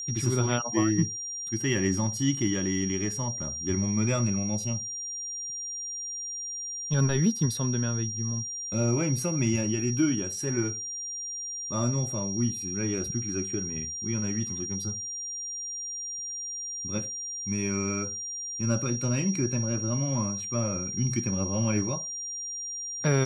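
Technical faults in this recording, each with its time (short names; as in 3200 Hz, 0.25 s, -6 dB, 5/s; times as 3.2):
tone 5700 Hz -33 dBFS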